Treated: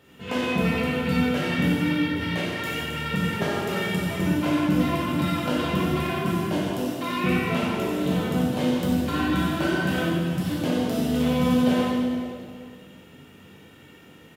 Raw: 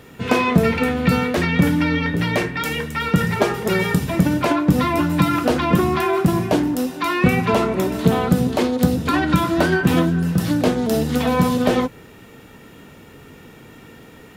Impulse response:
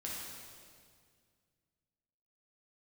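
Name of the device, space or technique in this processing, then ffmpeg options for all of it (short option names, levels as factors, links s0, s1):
PA in a hall: -filter_complex "[0:a]highpass=f=110:p=1,equalizer=f=3000:t=o:w=0.32:g=7.5,aecho=1:1:93:0.422[s0];[1:a]atrim=start_sample=2205[s1];[s0][s1]afir=irnorm=-1:irlink=0,volume=0.398"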